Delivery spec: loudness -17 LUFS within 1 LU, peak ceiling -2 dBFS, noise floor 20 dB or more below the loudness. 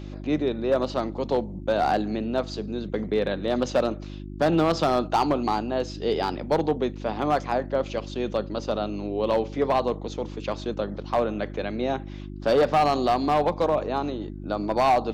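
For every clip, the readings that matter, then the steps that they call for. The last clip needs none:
clipped 1.3%; flat tops at -15.0 dBFS; hum 50 Hz; harmonics up to 350 Hz; hum level -34 dBFS; loudness -25.5 LUFS; peak -15.0 dBFS; loudness target -17.0 LUFS
-> clip repair -15 dBFS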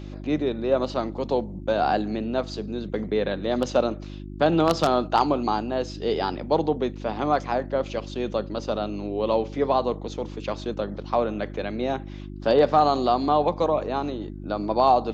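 clipped 0.0%; hum 50 Hz; harmonics up to 350 Hz; hum level -34 dBFS
-> de-hum 50 Hz, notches 7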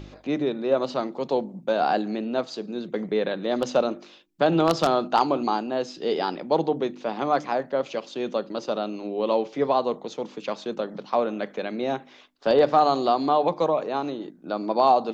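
hum none; loudness -25.5 LUFS; peak -6.0 dBFS; loudness target -17.0 LUFS
-> gain +8.5 dB; limiter -2 dBFS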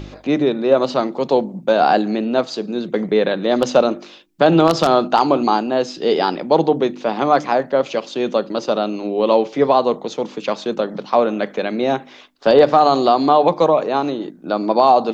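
loudness -17.5 LUFS; peak -2.0 dBFS; noise floor -42 dBFS

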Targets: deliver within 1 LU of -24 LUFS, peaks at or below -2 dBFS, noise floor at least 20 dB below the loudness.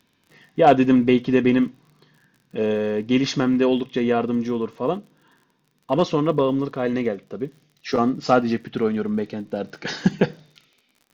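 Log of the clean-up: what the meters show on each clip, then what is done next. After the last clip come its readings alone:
ticks 48/s; loudness -21.5 LUFS; peak -4.0 dBFS; loudness target -24.0 LUFS
-> de-click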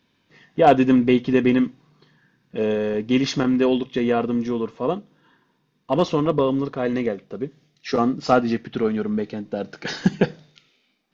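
ticks 0/s; loudness -21.5 LUFS; peak -3.0 dBFS; loudness target -24.0 LUFS
-> gain -2.5 dB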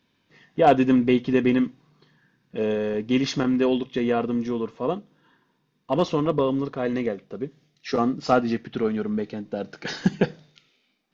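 loudness -24.0 LUFS; peak -5.5 dBFS; noise floor -70 dBFS

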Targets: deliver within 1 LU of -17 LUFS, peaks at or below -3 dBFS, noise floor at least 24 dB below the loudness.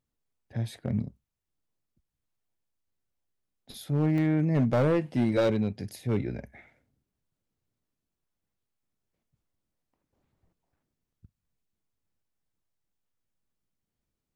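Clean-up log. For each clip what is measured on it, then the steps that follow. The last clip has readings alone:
clipped 0.6%; flat tops at -19.0 dBFS; dropouts 1; longest dropout 1.9 ms; loudness -27.5 LUFS; peak -19.0 dBFS; loudness target -17.0 LUFS
-> clip repair -19 dBFS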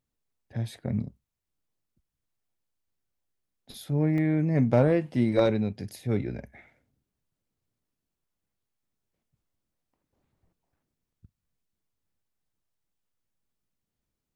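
clipped 0.0%; dropouts 1; longest dropout 1.9 ms
-> interpolate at 4.18, 1.9 ms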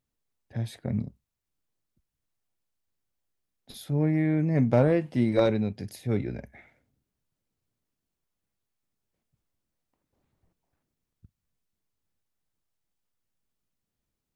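dropouts 0; loudness -26.5 LUFS; peak -10.0 dBFS; loudness target -17.0 LUFS
-> gain +9.5 dB; limiter -3 dBFS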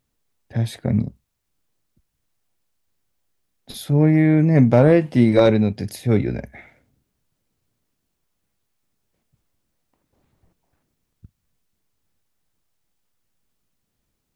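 loudness -17.5 LUFS; peak -3.0 dBFS; noise floor -75 dBFS

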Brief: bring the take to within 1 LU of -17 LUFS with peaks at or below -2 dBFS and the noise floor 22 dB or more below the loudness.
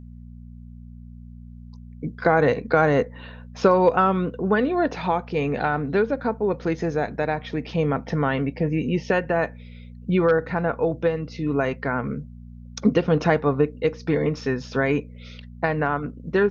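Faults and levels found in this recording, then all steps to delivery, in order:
hum 60 Hz; harmonics up to 240 Hz; hum level -39 dBFS; loudness -23.0 LUFS; peak -5.0 dBFS; loudness target -17.0 LUFS
-> de-hum 60 Hz, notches 4; gain +6 dB; limiter -2 dBFS

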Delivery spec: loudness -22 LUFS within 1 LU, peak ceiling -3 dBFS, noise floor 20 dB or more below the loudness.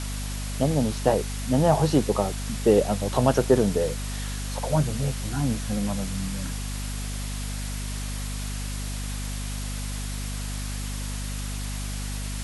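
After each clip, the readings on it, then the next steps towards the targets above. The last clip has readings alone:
hum 50 Hz; harmonics up to 250 Hz; hum level -29 dBFS; noise floor -31 dBFS; noise floor target -47 dBFS; loudness -27.0 LUFS; peak -6.0 dBFS; loudness target -22.0 LUFS
-> notches 50/100/150/200/250 Hz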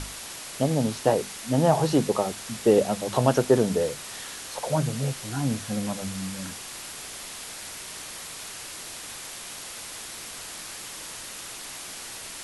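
hum none; noise floor -39 dBFS; noise floor target -48 dBFS
-> denoiser 9 dB, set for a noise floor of -39 dBFS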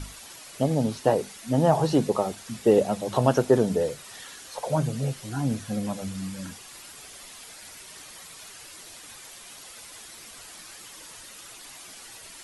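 noise floor -45 dBFS; noise floor target -46 dBFS
-> denoiser 6 dB, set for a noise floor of -45 dBFS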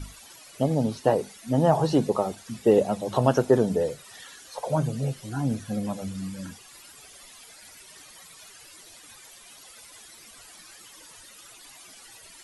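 noise floor -49 dBFS; loudness -25.5 LUFS; peak -5.0 dBFS; loudness target -22.0 LUFS
-> gain +3.5 dB; limiter -3 dBFS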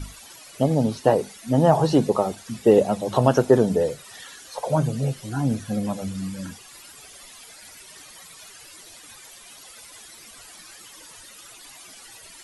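loudness -22.0 LUFS; peak -3.0 dBFS; noise floor -46 dBFS

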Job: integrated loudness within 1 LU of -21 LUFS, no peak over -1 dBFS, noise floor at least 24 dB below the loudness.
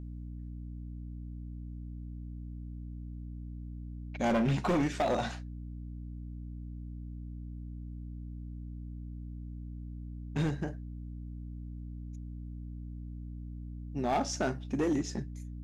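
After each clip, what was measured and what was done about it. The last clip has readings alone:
clipped 0.9%; flat tops at -24.0 dBFS; hum 60 Hz; harmonics up to 300 Hz; hum level -39 dBFS; loudness -37.5 LUFS; peak -24.0 dBFS; loudness target -21.0 LUFS
-> clip repair -24 dBFS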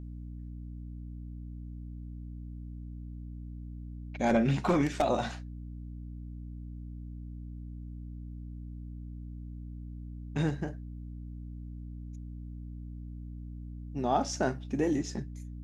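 clipped 0.0%; hum 60 Hz; harmonics up to 300 Hz; hum level -39 dBFS
-> de-hum 60 Hz, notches 5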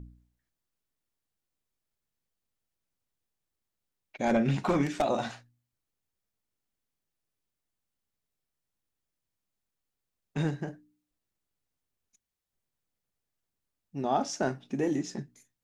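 hum none; loudness -30.5 LUFS; peak -15.0 dBFS; loudness target -21.0 LUFS
-> gain +9.5 dB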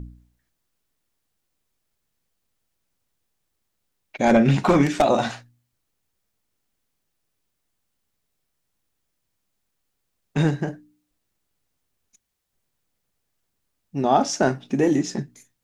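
loudness -21.0 LUFS; peak -5.5 dBFS; noise floor -77 dBFS

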